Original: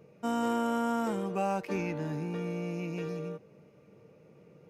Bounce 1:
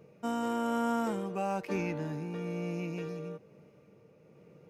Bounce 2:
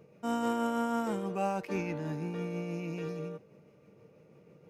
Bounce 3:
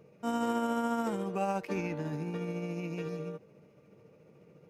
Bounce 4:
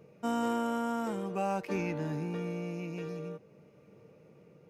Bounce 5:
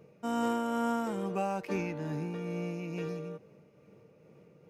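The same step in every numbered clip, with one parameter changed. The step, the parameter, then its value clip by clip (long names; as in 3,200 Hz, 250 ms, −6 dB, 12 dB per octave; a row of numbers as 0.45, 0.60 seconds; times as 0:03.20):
amplitude tremolo, speed: 1.1, 6.2, 14, 0.5, 2.3 Hertz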